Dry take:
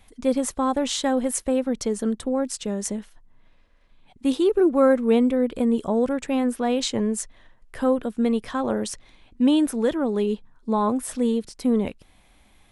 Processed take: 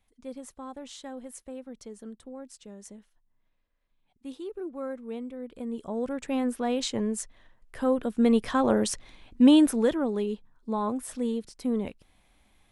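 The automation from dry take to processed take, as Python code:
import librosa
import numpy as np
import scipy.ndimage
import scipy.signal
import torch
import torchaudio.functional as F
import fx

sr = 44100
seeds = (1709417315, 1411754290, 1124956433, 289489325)

y = fx.gain(x, sr, db=fx.line((5.34, -18.0), (6.33, -5.0), (7.81, -5.0), (8.37, 1.5), (9.59, 1.5), (10.31, -7.0)))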